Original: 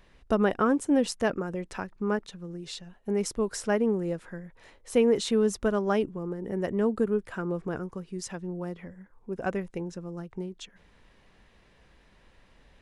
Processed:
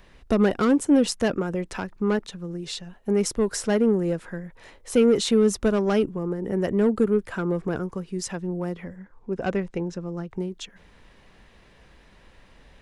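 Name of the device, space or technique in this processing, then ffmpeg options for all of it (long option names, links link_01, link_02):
one-band saturation: -filter_complex "[0:a]acrossover=split=430|2500[link_01][link_02][link_03];[link_02]asoftclip=type=tanh:threshold=-30dB[link_04];[link_01][link_04][link_03]amix=inputs=3:normalize=0,asettb=1/sr,asplit=3[link_05][link_06][link_07];[link_05]atrim=end=8.964[link_08];[link_06]atrim=start=8.96:end=10.31,asetpts=PTS-STARTPTS,afade=type=in:duration=0.004:curve=qsin,afade=type=out:start_time=1.346:duration=0.004:curve=qsin,lowpass=6600[link_09];[link_07]atrim=start=10.306[link_10];[link_08][link_09]acrossfade=duration=0.004:curve1=hsin:curve2=qsin[link_11];[link_11][link_10]acrossfade=duration=0.004:curve1=qsin:curve2=hsin,deesser=0.4,volume=6dB"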